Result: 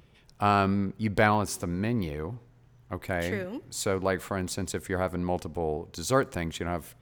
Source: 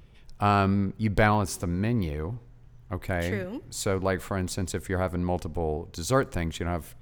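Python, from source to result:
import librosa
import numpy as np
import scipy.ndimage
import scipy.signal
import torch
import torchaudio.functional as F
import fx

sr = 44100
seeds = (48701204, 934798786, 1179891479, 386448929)

y = fx.highpass(x, sr, hz=140.0, slope=6)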